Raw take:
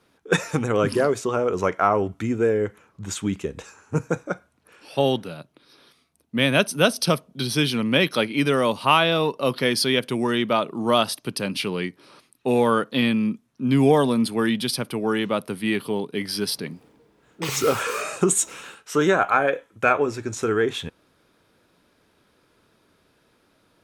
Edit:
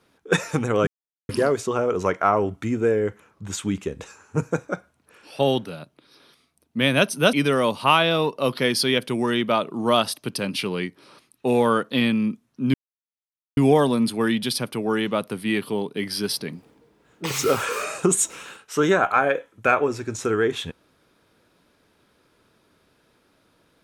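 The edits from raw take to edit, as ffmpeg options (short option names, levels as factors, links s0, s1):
-filter_complex "[0:a]asplit=4[s0][s1][s2][s3];[s0]atrim=end=0.87,asetpts=PTS-STARTPTS,afade=t=out:st=0.866:d=0.004:c=hsin,apad=pad_dur=0.42[s4];[s1]atrim=start=0.87:end=6.912,asetpts=PTS-STARTPTS,afade=t=in:d=0.004:c=hsin[s5];[s2]atrim=start=8.338:end=13.75,asetpts=PTS-STARTPTS,afade=t=out:st=5.408:d=0.004:c=hsin,apad=pad_dur=0.83[s6];[s3]atrim=start=13.75,asetpts=PTS-STARTPTS,afade=t=in:d=0.004:c=hsin[s7];[s4][s5]concat=n=2:v=0:a=1[s8];[s6][s7]concat=n=2:v=0:a=1[s9];[s8][s9]acrossfade=d=0.004:c1=hsin:c2=hsin"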